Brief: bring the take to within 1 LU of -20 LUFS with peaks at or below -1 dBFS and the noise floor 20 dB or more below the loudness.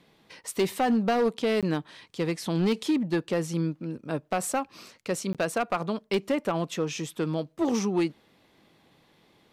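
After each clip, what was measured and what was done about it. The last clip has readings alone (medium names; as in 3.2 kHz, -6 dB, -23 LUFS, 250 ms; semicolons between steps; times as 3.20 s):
clipped samples 1.2%; clipping level -19.0 dBFS; dropouts 2; longest dropout 17 ms; loudness -28.5 LUFS; peak level -19.0 dBFS; loudness target -20.0 LUFS
-> clip repair -19 dBFS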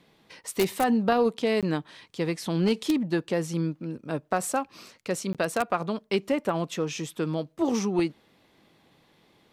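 clipped samples 0.0%; dropouts 2; longest dropout 17 ms
-> interpolate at 1.61/5.33 s, 17 ms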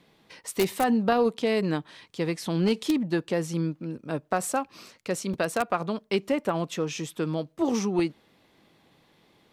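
dropouts 0; loudness -28.0 LUFS; peak level -10.0 dBFS; loudness target -20.0 LUFS
-> trim +8 dB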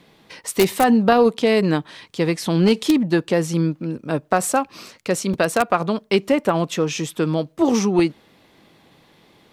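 loudness -20.0 LUFS; peak level -2.0 dBFS; noise floor -55 dBFS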